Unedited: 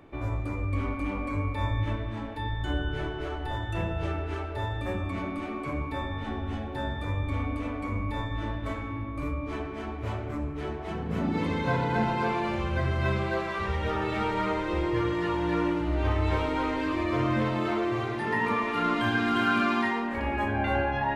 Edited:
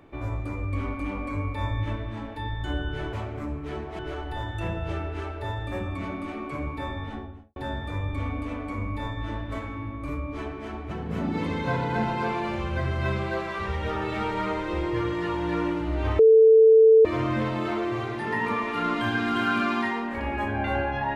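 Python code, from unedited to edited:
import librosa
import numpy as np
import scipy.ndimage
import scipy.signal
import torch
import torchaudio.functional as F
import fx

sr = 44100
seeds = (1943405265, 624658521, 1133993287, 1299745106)

y = fx.studio_fade_out(x, sr, start_s=6.12, length_s=0.58)
y = fx.edit(y, sr, fx.move(start_s=10.05, length_s=0.86, to_s=3.13),
    fx.bleep(start_s=16.19, length_s=0.86, hz=444.0, db=-11.0), tone=tone)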